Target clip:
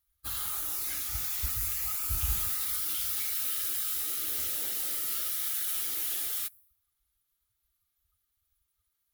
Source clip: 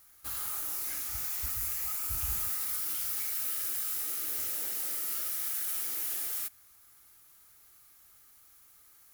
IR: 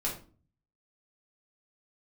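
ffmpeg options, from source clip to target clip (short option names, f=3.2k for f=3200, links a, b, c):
-af "lowshelf=f=130:g=6.5,afftdn=nr=25:nf=-54,equalizer=f=3.5k:t=o:w=0.65:g=9,volume=1.5dB"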